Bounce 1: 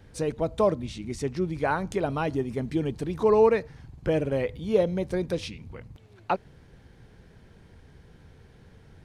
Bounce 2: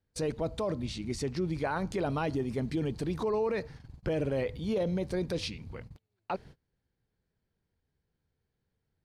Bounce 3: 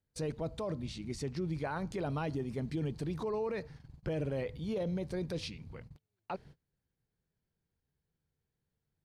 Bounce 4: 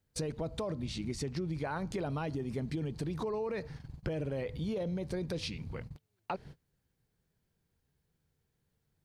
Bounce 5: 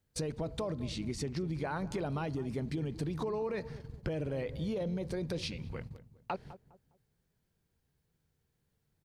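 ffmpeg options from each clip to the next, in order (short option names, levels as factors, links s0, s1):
-af "agate=range=0.0398:threshold=0.00631:ratio=16:detection=peak,equalizer=f=4500:w=3.8:g=6,alimiter=limit=0.0794:level=0:latency=1:release=14,volume=0.891"
-af "equalizer=f=150:w=3.6:g=5,volume=0.531"
-af "acompressor=threshold=0.0112:ratio=6,volume=2.11"
-filter_complex "[0:a]asplit=2[s0][s1];[s1]adelay=204,lowpass=f=880:p=1,volume=0.211,asplit=2[s2][s3];[s3]adelay=204,lowpass=f=880:p=1,volume=0.36,asplit=2[s4][s5];[s5]adelay=204,lowpass=f=880:p=1,volume=0.36[s6];[s0][s2][s4][s6]amix=inputs=4:normalize=0"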